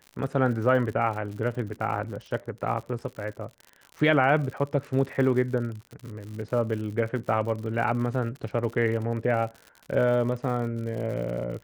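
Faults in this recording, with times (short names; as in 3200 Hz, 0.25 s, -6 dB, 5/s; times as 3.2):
crackle 78/s -35 dBFS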